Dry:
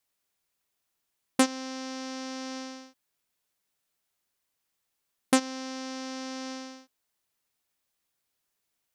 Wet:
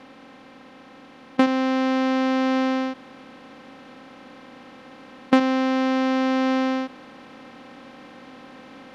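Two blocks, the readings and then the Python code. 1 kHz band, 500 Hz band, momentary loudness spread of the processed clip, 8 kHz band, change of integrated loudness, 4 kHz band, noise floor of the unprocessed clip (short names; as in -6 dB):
+11.5 dB, +12.0 dB, 9 LU, n/a, +10.0 dB, +4.0 dB, -81 dBFS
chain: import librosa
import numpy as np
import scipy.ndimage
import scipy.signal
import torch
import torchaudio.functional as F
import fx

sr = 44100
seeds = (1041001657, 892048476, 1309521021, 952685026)

p1 = fx.bin_compress(x, sr, power=0.4)
p2 = fx.rider(p1, sr, range_db=10, speed_s=0.5)
p3 = p1 + F.gain(torch.from_numpy(p2), 3.0).numpy()
p4 = fx.air_absorb(p3, sr, metres=300.0)
y = F.gain(torch.from_numpy(p4), -2.0).numpy()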